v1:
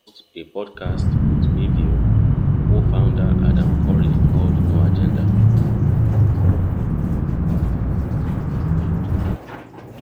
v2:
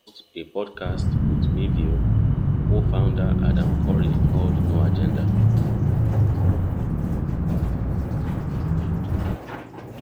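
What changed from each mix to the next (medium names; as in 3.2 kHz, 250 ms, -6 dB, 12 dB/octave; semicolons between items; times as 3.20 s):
first sound -4.0 dB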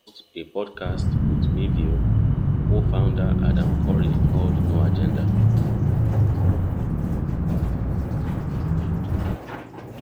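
no change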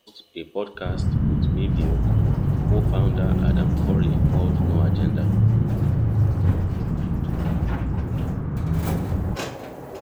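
second sound: entry -1.80 s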